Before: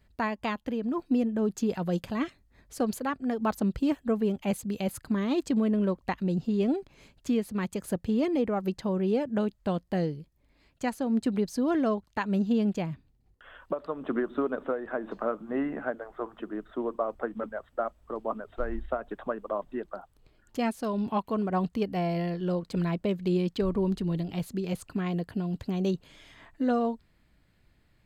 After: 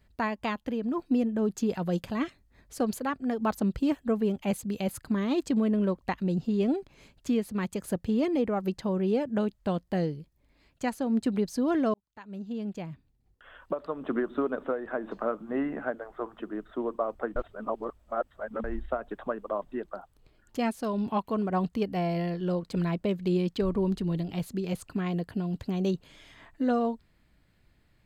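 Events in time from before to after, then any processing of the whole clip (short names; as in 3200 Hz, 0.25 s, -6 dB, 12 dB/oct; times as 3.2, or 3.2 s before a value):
11.94–13.76 fade in
17.36–18.64 reverse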